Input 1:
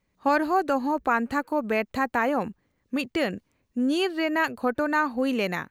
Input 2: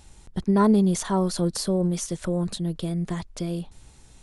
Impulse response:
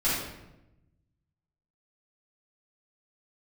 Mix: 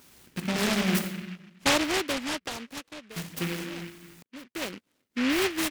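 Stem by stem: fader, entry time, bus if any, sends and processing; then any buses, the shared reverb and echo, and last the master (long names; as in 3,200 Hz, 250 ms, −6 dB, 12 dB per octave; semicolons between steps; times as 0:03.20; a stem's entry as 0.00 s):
+0.5 dB, 1.40 s, no send, notch on a step sequencer 3.9 Hz 760–3,400 Hz; automatic ducking −19 dB, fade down 1.20 s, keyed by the second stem
+1.0 dB, 0.00 s, muted 0:00.99–0:03.16, send −13 dB, parametric band 730 Hz −13.5 dB 0.75 octaves; hard clipping −22 dBFS, distortion −10 dB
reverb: on, RT60 0.95 s, pre-delay 3 ms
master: high-pass filter 240 Hz 12 dB per octave; short delay modulated by noise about 2,000 Hz, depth 0.26 ms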